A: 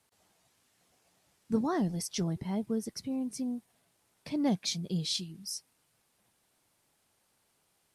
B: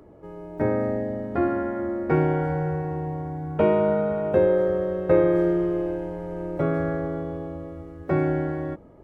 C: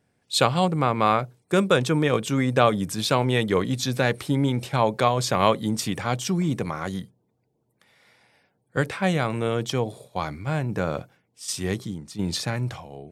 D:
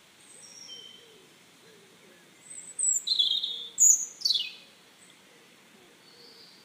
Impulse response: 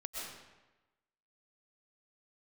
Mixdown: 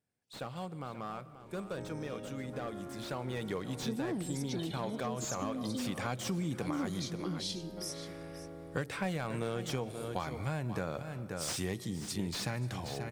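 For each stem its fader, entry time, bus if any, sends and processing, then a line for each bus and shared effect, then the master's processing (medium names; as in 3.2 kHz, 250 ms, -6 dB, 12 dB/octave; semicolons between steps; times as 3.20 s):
-3.0 dB, 2.35 s, send -21 dB, echo send -14.5 dB, peaking EQ 330 Hz +9.5 dB 0.77 oct
-18.0 dB, 1.30 s, no send, no echo send, every event in the spectrogram widened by 240 ms; compression, threshold -24 dBFS, peak gain reduction 12.5 dB
2.87 s -19.5 dB -> 3.47 s -9 dB -> 5.54 s -9 dB -> 6.12 s -0.5 dB, 0.00 s, send -15.5 dB, echo send -12 dB, treble shelf 5.4 kHz +7.5 dB; slew-rate limiter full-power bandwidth 150 Hz
-14.5 dB, 1.40 s, no send, no echo send, ring modulator 320 Hz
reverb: on, RT60 1.1 s, pre-delay 85 ms
echo: delay 533 ms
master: compression 4:1, threshold -34 dBFS, peak gain reduction 14 dB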